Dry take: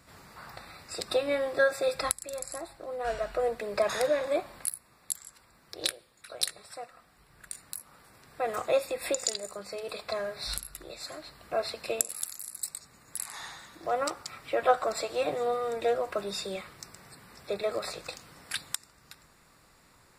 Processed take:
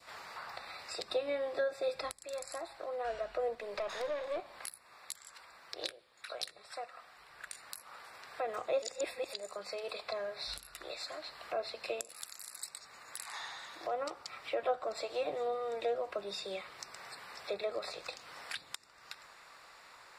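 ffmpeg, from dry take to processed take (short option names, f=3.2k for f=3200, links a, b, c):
-filter_complex "[0:a]asettb=1/sr,asplit=3[a][b][c];[a]atrim=end=3.554[d];[b]atrim=start=3.55:end=4.63,asetpts=PTS-STARTPTS,afade=t=in:d=0.004:c=qsin,afade=t=out:st=1.076:d=0.004:c=qsin,aeval=exprs='(tanh(20*val(0)+0.55)-tanh(0.55))/20':c=same[e];[c]atrim=start=4.626[f];[d][e]acrossfade=d=0.004:c1=hsin:c2=qsin[g];[g][f]acrossfade=d=0.004:c1=qsin:c2=hsin,asplit=3[h][i][j];[h]atrim=end=8.822[k];[i]atrim=start=8.818:end=9.332,asetpts=PTS-STARTPTS,areverse[l];[j]atrim=start=9.328[m];[k][l]acrossfade=d=0.004:c1=hsin:c2=hsin[n];[n][m]acrossfade=d=0.004:c1=hsin:c2=hsin,acrossover=split=520 5700:gain=0.0891 1 0.224[o][p][q];[o][p][q]amix=inputs=3:normalize=0,acrossover=split=390[r][s];[s]acompressor=threshold=-50dB:ratio=3[t];[r][t]amix=inputs=2:normalize=0,adynamicequalizer=threshold=0.00112:dfrequency=1500:dqfactor=1.3:tfrequency=1500:tqfactor=1.3:attack=5:release=100:ratio=0.375:range=2:mode=cutabove:tftype=bell,volume=7.5dB"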